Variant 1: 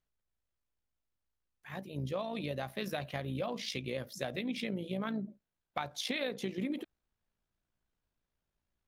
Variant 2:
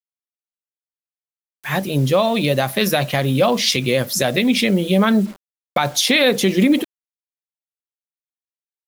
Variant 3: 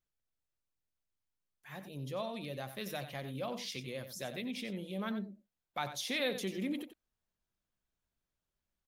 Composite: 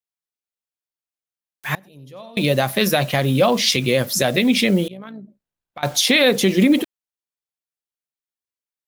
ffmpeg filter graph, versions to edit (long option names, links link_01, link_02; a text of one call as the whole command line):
ffmpeg -i take0.wav -i take1.wav -i take2.wav -filter_complex "[1:a]asplit=3[link_01][link_02][link_03];[link_01]atrim=end=1.752[link_04];[2:a]atrim=start=1.748:end=2.372[link_05];[link_02]atrim=start=2.368:end=4.882[link_06];[0:a]atrim=start=4.878:end=5.832[link_07];[link_03]atrim=start=5.828[link_08];[link_04][link_05]acrossfade=duration=0.004:curve1=hsin:curve2=hsin[link_09];[link_09][link_06]acrossfade=duration=0.004:curve1=hsin:curve2=hsin[link_10];[link_10][link_07]acrossfade=duration=0.004:curve1=hsin:curve2=hsin[link_11];[link_11][link_08]acrossfade=duration=0.004:curve1=hsin:curve2=hsin" out.wav